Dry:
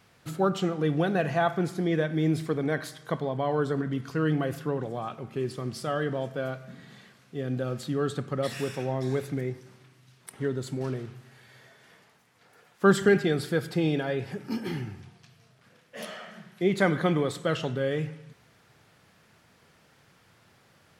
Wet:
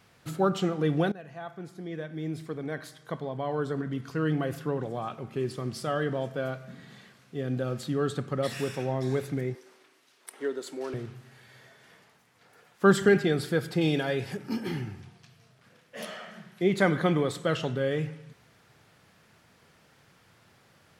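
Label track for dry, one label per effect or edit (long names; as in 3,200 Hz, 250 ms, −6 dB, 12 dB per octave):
1.120000	5.020000	fade in, from −20 dB
9.550000	10.940000	high-pass filter 310 Hz 24 dB per octave
13.810000	14.370000	high-shelf EQ 3,000 Hz +8.5 dB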